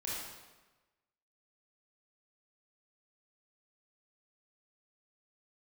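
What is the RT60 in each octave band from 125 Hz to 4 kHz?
1.2, 1.2, 1.2, 1.2, 1.1, 0.95 s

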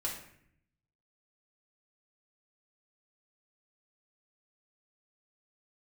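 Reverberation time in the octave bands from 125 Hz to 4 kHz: 1.2, 0.95, 0.70, 0.60, 0.70, 0.50 s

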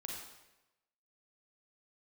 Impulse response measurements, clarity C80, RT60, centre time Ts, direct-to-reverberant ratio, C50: 3.5 dB, 1.0 s, 61 ms, -1.5 dB, 0.5 dB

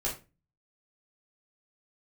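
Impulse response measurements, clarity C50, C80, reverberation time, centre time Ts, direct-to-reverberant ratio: 8.5 dB, 15.0 dB, 0.30 s, 24 ms, -5.0 dB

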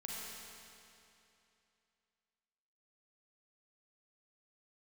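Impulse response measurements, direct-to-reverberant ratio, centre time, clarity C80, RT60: -4.5 dB, 0.176 s, -1.5 dB, 2.8 s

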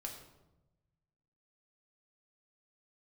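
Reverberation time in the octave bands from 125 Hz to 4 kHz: 1.8, 1.4, 1.1, 0.90, 0.70, 0.60 s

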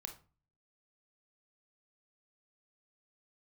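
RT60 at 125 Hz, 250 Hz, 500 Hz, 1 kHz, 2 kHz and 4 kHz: 0.70, 0.50, 0.35, 0.35, 0.30, 0.25 s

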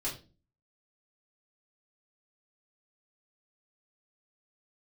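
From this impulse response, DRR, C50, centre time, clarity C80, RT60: -7.5 dB, 9.0 dB, 24 ms, 14.5 dB, 0.35 s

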